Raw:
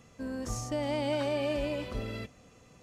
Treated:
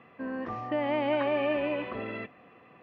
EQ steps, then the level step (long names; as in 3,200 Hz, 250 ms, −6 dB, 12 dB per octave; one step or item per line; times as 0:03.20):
high-frequency loss of the air 190 metres
loudspeaker in its box 180–3,300 Hz, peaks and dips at 350 Hz +5 dB, 730 Hz +6 dB, 1,100 Hz +9 dB, 1,800 Hz +9 dB, 2,600 Hz +6 dB
+1.5 dB